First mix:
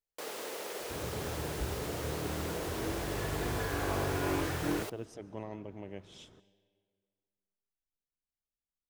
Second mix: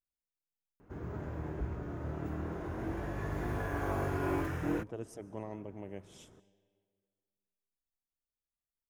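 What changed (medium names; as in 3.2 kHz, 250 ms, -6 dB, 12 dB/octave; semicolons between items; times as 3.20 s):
speech: add treble shelf 6.3 kHz +10 dB; first sound: muted; master: add peaking EQ 3.9 kHz -10 dB 1.3 oct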